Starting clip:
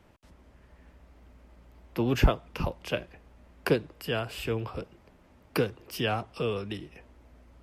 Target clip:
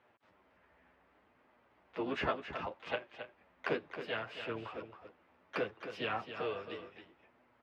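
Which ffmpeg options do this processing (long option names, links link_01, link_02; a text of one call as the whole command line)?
ffmpeg -i in.wav -filter_complex "[0:a]highpass=frequency=990:poles=1,flanger=delay=7.8:depth=4.7:regen=5:speed=0.67:shape=triangular,asplit=4[link_01][link_02][link_03][link_04];[link_02]asetrate=33038,aresample=44100,atempo=1.33484,volume=-15dB[link_05];[link_03]asetrate=55563,aresample=44100,atempo=0.793701,volume=-15dB[link_06];[link_04]asetrate=58866,aresample=44100,atempo=0.749154,volume=-10dB[link_07];[link_01][link_05][link_06][link_07]amix=inputs=4:normalize=0,lowpass=2200,asplit=2[link_08][link_09];[link_09]aecho=0:1:270:0.335[link_10];[link_08][link_10]amix=inputs=2:normalize=0,volume=1.5dB" out.wav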